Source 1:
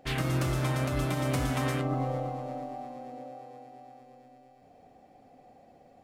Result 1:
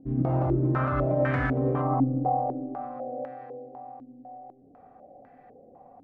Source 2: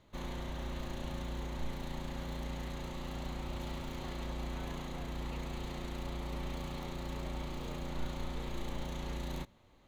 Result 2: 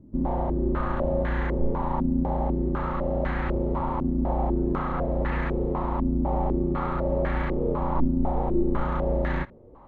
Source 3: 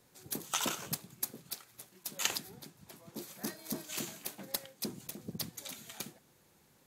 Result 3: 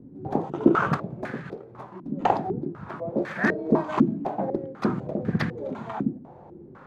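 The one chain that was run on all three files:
harmonic and percussive parts rebalanced harmonic +6 dB
low-pass on a step sequencer 4 Hz 270–1,700 Hz
loudness normalisation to −27 LKFS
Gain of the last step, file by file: −3.5, +8.0, +15.0 decibels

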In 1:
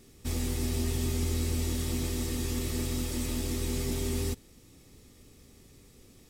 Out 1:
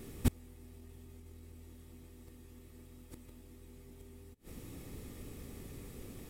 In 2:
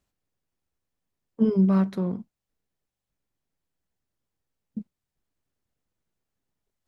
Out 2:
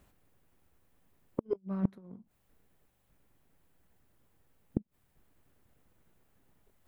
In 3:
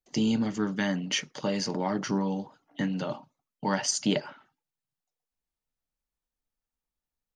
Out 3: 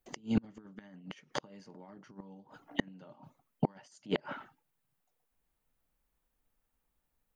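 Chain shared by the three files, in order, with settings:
compressor whose output falls as the input rises −29 dBFS, ratio −0.5
gate with flip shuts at −23 dBFS, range −31 dB
parametric band 5,400 Hz −9.5 dB 1.5 octaves
level +8 dB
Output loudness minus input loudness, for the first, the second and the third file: −16.0, −13.5, −8.0 LU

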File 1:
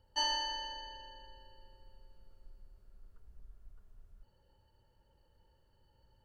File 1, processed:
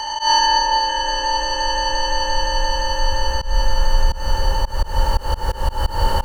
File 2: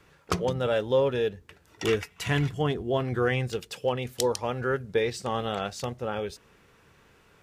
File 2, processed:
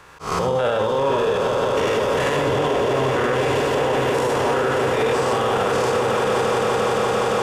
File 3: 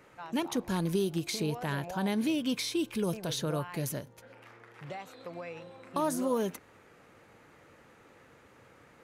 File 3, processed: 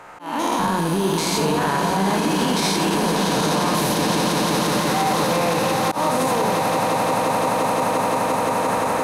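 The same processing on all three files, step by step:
spectrum averaged block by block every 200 ms
camcorder AGC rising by 5.8 dB per second
octave-band graphic EQ 125/250/1,000/8,000 Hz −4/−4/+9/+4 dB
on a send: echo that builds up and dies away 173 ms, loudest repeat 8, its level −8.5 dB
on the sum: reverb whose tail is shaped and stops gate 100 ms rising, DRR 4.5 dB
in parallel at −10 dB: soft clipping −22 dBFS
on the sum: volume swells 161 ms
brickwall limiter −21 dBFS
loudness normalisation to −20 LKFS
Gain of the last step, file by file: +15.5, +8.5, +9.5 decibels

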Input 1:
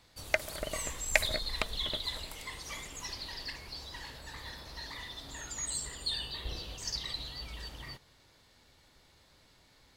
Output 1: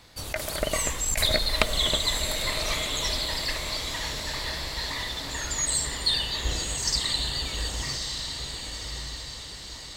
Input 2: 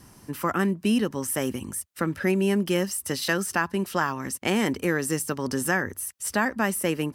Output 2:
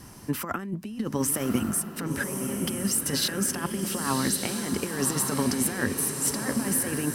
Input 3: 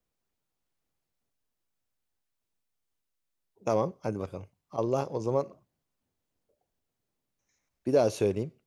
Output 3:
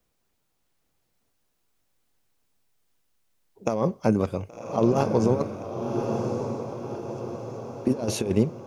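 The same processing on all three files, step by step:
compressor whose output falls as the input rises −29 dBFS, ratio −0.5
feedback delay with all-pass diffusion 1,119 ms, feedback 54%, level −5 dB
dynamic equaliser 220 Hz, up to +7 dB, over −49 dBFS, Q 4.4
loudness normalisation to −27 LKFS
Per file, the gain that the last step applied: +9.5, +0.5, +6.5 decibels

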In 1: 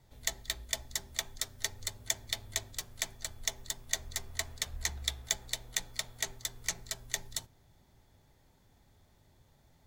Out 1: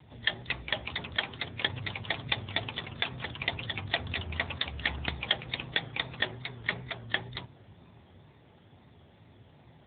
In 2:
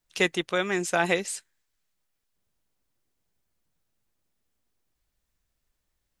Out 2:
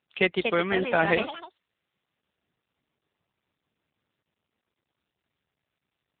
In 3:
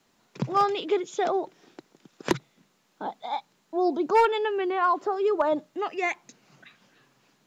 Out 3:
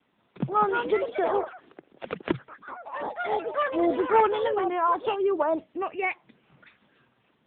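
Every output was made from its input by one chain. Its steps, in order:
delay with pitch and tempo change per echo 292 ms, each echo +4 semitones, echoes 3, each echo −6 dB
tape wow and flutter 110 cents
AMR narrowband 7.95 kbit/s 8,000 Hz
normalise the peak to −9 dBFS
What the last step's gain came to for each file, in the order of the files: +12.0, +2.0, 0.0 decibels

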